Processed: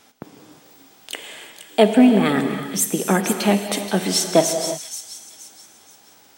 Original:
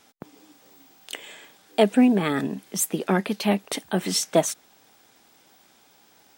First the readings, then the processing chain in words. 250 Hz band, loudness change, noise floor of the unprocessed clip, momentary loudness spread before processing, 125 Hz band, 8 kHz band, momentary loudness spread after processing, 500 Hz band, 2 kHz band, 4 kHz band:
+5.0 dB, +4.5 dB, -58 dBFS, 19 LU, +4.0 dB, +6.0 dB, 20 LU, +5.0 dB, +5.0 dB, +5.5 dB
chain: on a send: feedback echo behind a high-pass 477 ms, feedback 34%, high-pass 3.9 kHz, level -7 dB; on the sum: gated-style reverb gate 380 ms flat, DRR 6 dB; trim +4 dB

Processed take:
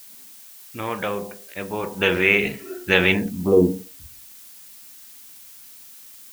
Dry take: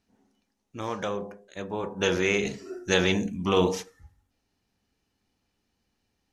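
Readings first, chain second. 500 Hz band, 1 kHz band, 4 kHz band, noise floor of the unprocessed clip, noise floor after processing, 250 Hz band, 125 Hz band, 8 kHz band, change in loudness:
+5.0 dB, +2.0 dB, +3.5 dB, -78 dBFS, -45 dBFS, +5.5 dB, +4.5 dB, -1.5 dB, +6.5 dB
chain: low-pass sweep 2.5 kHz -> 270 Hz, 3.13–3.66 s; added noise blue -48 dBFS; trim +3.5 dB

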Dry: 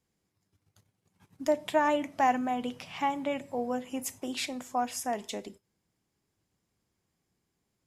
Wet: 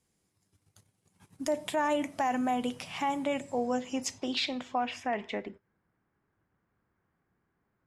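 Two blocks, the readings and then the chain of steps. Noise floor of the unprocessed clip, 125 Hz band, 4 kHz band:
-81 dBFS, +1.5 dB, +3.5 dB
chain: low-pass sweep 10 kHz -> 1.5 kHz, 3.20–5.74 s; peak limiter -22 dBFS, peak gain reduction 8.5 dB; trim +2 dB

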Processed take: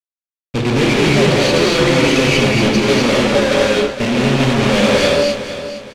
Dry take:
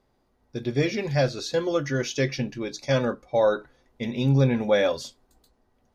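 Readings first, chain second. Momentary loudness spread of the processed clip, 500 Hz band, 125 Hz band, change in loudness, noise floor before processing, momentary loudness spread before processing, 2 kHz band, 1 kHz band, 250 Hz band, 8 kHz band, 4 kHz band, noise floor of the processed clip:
6 LU, +10.5 dB, +8.0 dB, +11.5 dB, -69 dBFS, 12 LU, +15.5 dB, +13.5 dB, +13.0 dB, +15.0 dB, +17.5 dB, under -85 dBFS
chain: median filter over 25 samples; resonant high shelf 1.7 kHz +8 dB, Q 3; de-hum 72.32 Hz, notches 20; fuzz box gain 45 dB, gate -53 dBFS; distance through air 68 m; on a send: feedback delay 462 ms, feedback 34%, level -12 dB; on the sum: gated-style reverb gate 280 ms rising, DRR -2.5 dB; trim -2.5 dB

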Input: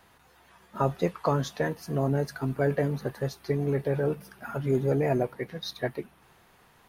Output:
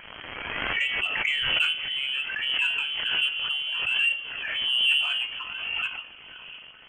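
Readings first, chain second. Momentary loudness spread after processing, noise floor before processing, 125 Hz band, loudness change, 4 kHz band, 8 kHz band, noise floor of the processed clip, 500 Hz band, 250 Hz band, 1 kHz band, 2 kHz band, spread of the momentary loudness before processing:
15 LU, -60 dBFS, under -20 dB, +4.5 dB, +22.0 dB, no reading, -47 dBFS, -19.5 dB, under -15 dB, -4.5 dB, +15.0 dB, 10 LU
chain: on a send: echo that smears into a reverb 561 ms, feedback 47%, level -14.5 dB; on the sum: phaser 0.61 Hz, delay 2.3 ms, feedback 56%; bass shelf 390 Hz -3.5 dB; feedback comb 53 Hz, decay 0.41 s, harmonics all, mix 70%; crackle 200 per s -37 dBFS; frequency inversion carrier 3.2 kHz; in parallel at -5.5 dB: saturation -26.5 dBFS, distortion -13 dB; on the sum: swell ahead of each attack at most 27 dB/s; trim +1.5 dB

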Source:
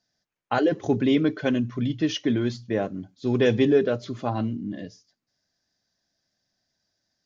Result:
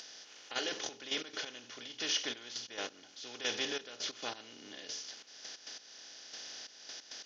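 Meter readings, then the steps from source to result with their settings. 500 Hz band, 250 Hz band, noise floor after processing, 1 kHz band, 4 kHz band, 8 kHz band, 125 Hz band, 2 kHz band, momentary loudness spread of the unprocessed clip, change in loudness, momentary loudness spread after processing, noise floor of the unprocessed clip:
-21.0 dB, -26.5 dB, -58 dBFS, -14.5 dB, +1.0 dB, no reading, -34.5 dB, -7.0 dB, 11 LU, -15.0 dB, 14 LU, -83 dBFS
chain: spectral levelling over time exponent 0.4; band-pass filter 5.5 kHz, Q 1.4; trance gate ".....xxx..x.x" 135 bpm -12 dB; upward compressor, threshold -41 dBFS; endings held to a fixed fall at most 430 dB/s; trim +1 dB

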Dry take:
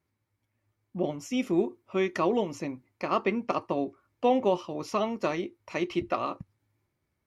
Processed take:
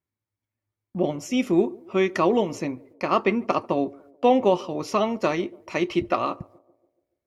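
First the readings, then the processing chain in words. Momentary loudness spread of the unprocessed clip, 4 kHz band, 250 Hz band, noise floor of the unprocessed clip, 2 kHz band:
10 LU, +5.5 dB, +5.5 dB, -80 dBFS, +5.5 dB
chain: gate -58 dBFS, range -15 dB; on a send: band-passed feedback delay 143 ms, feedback 54%, band-pass 430 Hz, level -22.5 dB; on the sum: trim +5.5 dB

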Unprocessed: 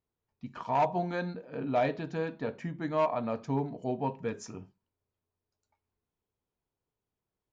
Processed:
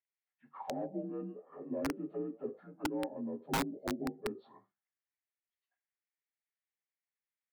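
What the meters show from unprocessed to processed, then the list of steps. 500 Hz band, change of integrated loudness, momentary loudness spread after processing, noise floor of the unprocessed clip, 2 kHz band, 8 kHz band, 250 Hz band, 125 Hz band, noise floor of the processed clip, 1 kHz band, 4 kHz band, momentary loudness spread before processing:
-8.5 dB, -7.0 dB, 11 LU, under -85 dBFS, -5.0 dB, no reading, -3.0 dB, -11.5 dB, under -85 dBFS, -11.5 dB, +1.5 dB, 14 LU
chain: frequency axis rescaled in octaves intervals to 86%; auto-wah 290–2000 Hz, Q 3.6, down, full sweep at -31 dBFS; integer overflow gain 30 dB; trim +3 dB

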